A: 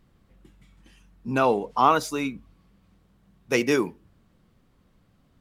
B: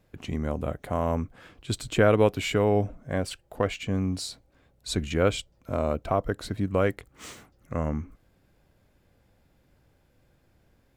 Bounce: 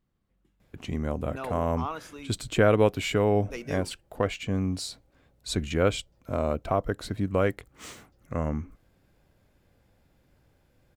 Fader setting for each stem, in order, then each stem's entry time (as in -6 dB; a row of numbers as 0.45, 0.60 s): -15.5, -0.5 dB; 0.00, 0.60 s